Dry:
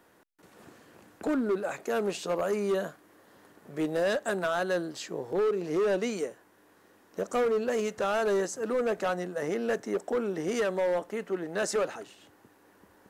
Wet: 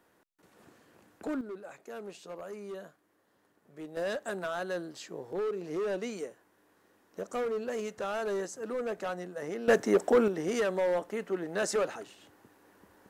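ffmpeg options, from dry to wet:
-af "asetnsamples=n=441:p=0,asendcmd='1.41 volume volume -13.5dB;3.97 volume volume -6dB;9.68 volume volume 6dB;10.28 volume volume -1dB',volume=0.501"

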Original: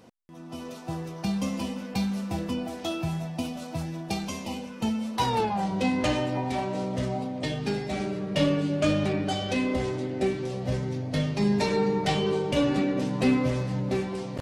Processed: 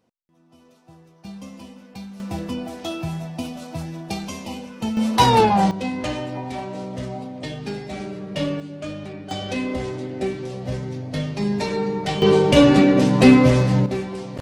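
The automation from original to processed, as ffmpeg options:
-af "asetnsamples=n=441:p=0,asendcmd='1.25 volume volume -9dB;2.2 volume volume 2dB;4.97 volume volume 11dB;5.71 volume volume -1dB;8.6 volume volume -8dB;9.31 volume volume 1dB;12.22 volume volume 11.5dB;13.86 volume volume 2dB',volume=0.178"

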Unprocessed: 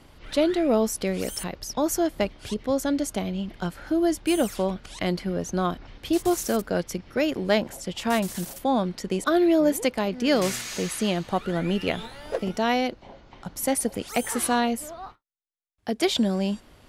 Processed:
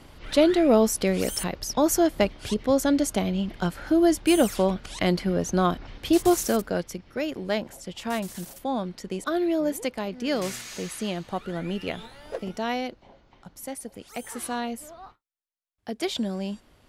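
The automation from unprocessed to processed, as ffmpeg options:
-af "volume=3.16,afade=t=out:st=6.29:d=0.69:silence=0.398107,afade=t=out:st=12.72:d=1.1:silence=0.421697,afade=t=in:st=13.82:d=1.14:silence=0.446684"

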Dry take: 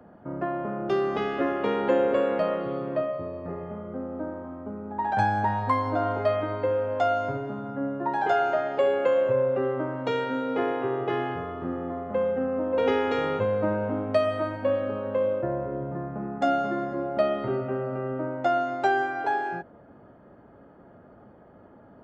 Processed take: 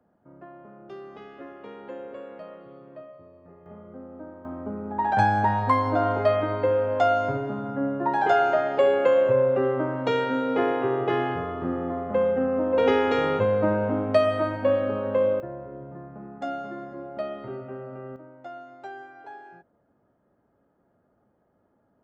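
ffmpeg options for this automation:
-af "asetnsamples=n=441:p=0,asendcmd='3.66 volume volume -8dB;4.45 volume volume 3dB;15.4 volume volume -8dB;18.16 volume volume -16.5dB',volume=0.158"

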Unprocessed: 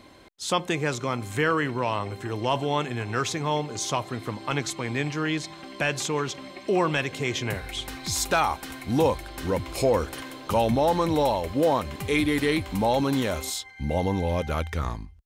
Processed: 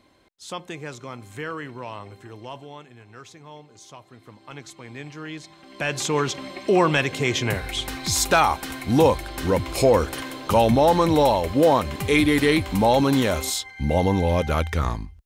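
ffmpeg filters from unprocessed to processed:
-af "volume=4.73,afade=t=out:st=2.11:d=0.72:silence=0.375837,afade=t=in:st=4:d=1.65:silence=0.316228,afade=t=in:st=5.65:d=0.54:silence=0.251189"

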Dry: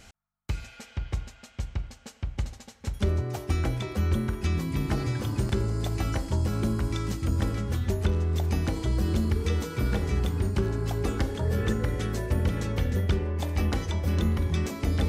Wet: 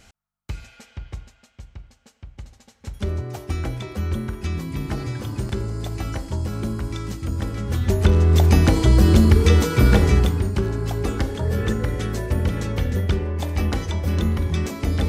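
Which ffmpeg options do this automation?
-af "volume=9.44,afade=t=out:st=0.68:d=0.92:silence=0.421697,afade=t=in:st=2.45:d=0.69:silence=0.375837,afade=t=in:st=7.52:d=0.87:silence=0.266073,afade=t=out:st=10.04:d=0.4:silence=0.398107"

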